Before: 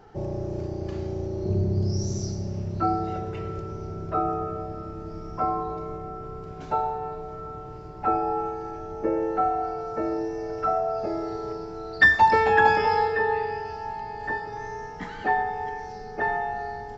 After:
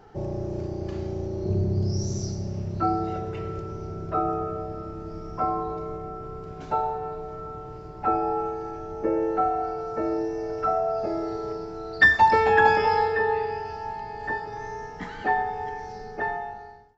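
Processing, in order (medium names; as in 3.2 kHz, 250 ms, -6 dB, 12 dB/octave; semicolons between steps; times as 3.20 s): fade out at the end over 0.95 s; spring tank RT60 1.1 s, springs 54 ms, DRR 18 dB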